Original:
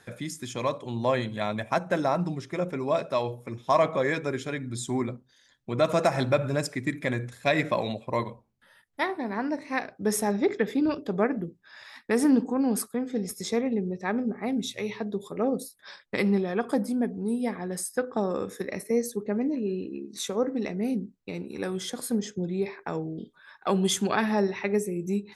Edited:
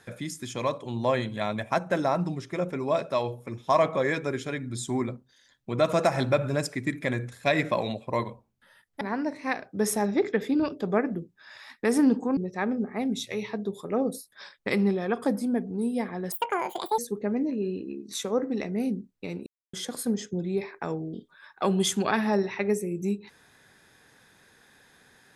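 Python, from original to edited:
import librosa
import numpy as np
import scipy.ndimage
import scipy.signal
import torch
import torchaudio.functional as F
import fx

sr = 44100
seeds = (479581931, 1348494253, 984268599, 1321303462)

y = fx.edit(x, sr, fx.cut(start_s=9.01, length_s=0.26),
    fx.cut(start_s=12.63, length_s=1.21),
    fx.speed_span(start_s=17.79, length_s=1.24, speed=1.87),
    fx.silence(start_s=21.51, length_s=0.27), tone=tone)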